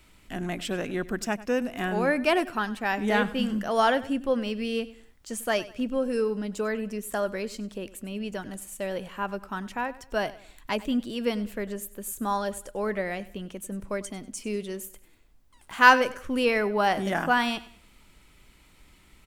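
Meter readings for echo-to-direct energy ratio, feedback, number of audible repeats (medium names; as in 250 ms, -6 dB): -17.5 dB, 35%, 2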